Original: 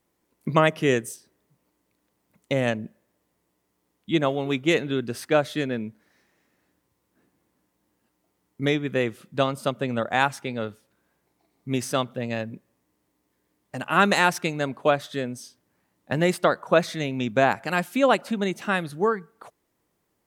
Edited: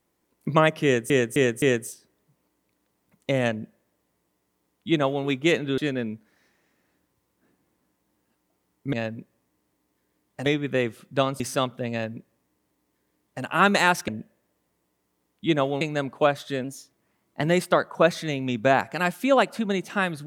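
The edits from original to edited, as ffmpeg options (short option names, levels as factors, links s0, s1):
-filter_complex "[0:a]asplit=12[s0][s1][s2][s3][s4][s5][s6][s7][s8][s9][s10][s11];[s0]atrim=end=1.102[s12];[s1]atrim=start=0.838:end=1.102[s13];[s2]atrim=start=0.838:end=1.102[s14];[s3]atrim=start=0.838:end=5.002[s15];[s4]atrim=start=5.518:end=8.672[s16];[s5]atrim=start=12.278:end=13.812[s17];[s6]atrim=start=8.668:end=9.612[s18];[s7]atrim=start=11.768:end=14.452[s19];[s8]atrim=start=2.728:end=4.462[s20];[s9]atrim=start=14.448:end=15.284[s21];[s10]atrim=start=15.28:end=16.15,asetpts=PTS-STARTPTS,asetrate=48510,aresample=44100,atrim=end_sample=34879,asetpts=PTS-STARTPTS[s22];[s11]atrim=start=16.146[s23];[s12][s13]acrossfade=d=0.004:c1=hsin:c2=hsin[s24];[s24][s14]acrossfade=d=0.004:c1=hsin:c2=hsin[s25];[s25][s15]acrossfade=d=0.004:c1=hsin:c2=hsin[s26];[s26][s16]acrossfade=d=0.004:c1=hsin:c2=hsin[s27];[s27][s17]acrossfade=d=0.004:c1=hsin:c2=hsin[s28];[s28][s18]acrossfade=d=0.004:c1=hsin:c2=hsin[s29];[s29][s19]acrossfade=d=0.004:c1=hsin:c2=hsin[s30];[s30][s20]acrossfade=d=0.004:c1=hsin:c2=hsin[s31];[s31][s21]acrossfade=d=0.004:c1=hsin:c2=hsin[s32];[s32][s22]acrossfade=d=0.004:c1=hsin:c2=hsin[s33];[s33][s23]acrossfade=d=0.004:c1=hsin:c2=hsin"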